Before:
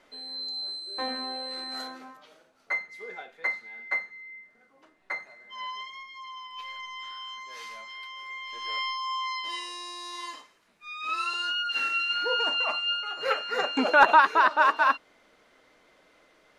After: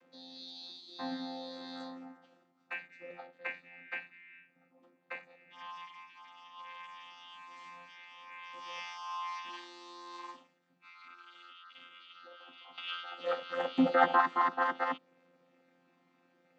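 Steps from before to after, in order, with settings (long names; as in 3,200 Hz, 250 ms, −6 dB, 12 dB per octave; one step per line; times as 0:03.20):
channel vocoder with a chord as carrier bare fifth, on F3
0:10.35–0:12.78: downward compressor 5 to 1, threshold −46 dBFS, peak gain reduction 18.5 dB
level −7.5 dB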